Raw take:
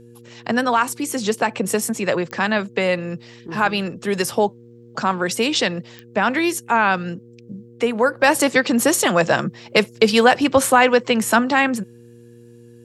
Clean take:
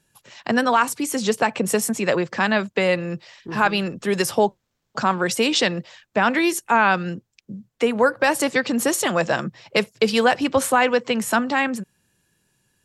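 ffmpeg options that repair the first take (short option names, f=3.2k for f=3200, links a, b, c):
-af "adeclick=t=4,bandreject=f=118.4:t=h:w=4,bandreject=f=236.8:t=h:w=4,bandreject=f=355.2:t=h:w=4,bandreject=f=473.6:t=h:w=4,asetnsamples=n=441:p=0,asendcmd='8.23 volume volume -4dB',volume=0dB"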